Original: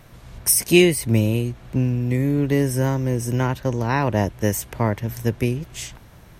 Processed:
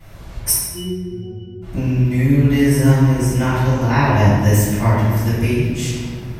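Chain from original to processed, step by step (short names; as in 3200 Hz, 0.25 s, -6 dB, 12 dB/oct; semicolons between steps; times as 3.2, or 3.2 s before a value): 0.51–1.62 octave resonator F#, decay 0.74 s; reverb RT60 1.6 s, pre-delay 3 ms, DRR -17 dB; dynamic EQ 490 Hz, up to -7 dB, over -19 dBFS, Q 1.1; gain -9 dB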